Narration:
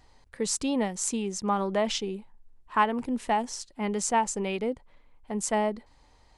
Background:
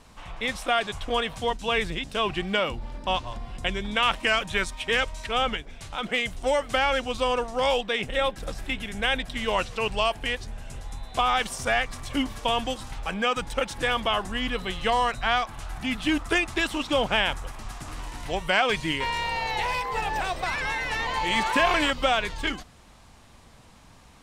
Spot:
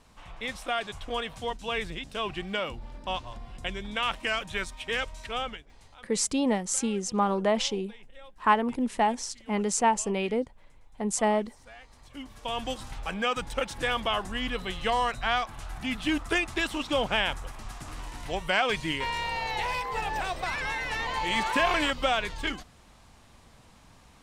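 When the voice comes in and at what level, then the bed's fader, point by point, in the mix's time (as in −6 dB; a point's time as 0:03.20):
5.70 s, +1.5 dB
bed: 0:05.33 −6 dB
0:06.19 −25.5 dB
0:11.78 −25.5 dB
0:12.71 −3 dB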